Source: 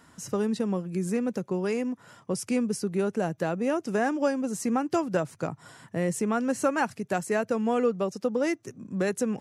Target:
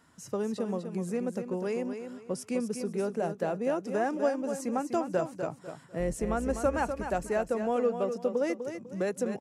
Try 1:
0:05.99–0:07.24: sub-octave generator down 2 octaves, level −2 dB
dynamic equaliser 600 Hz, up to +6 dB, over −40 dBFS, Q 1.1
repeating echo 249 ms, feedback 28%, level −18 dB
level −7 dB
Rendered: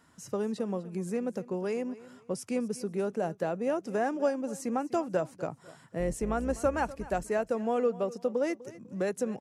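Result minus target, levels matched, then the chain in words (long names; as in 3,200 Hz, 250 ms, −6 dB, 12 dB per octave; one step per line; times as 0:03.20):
echo-to-direct −10 dB
0:05.99–0:07.24: sub-octave generator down 2 octaves, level −2 dB
dynamic equaliser 600 Hz, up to +6 dB, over −40 dBFS, Q 1.1
repeating echo 249 ms, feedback 28%, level −8 dB
level −7 dB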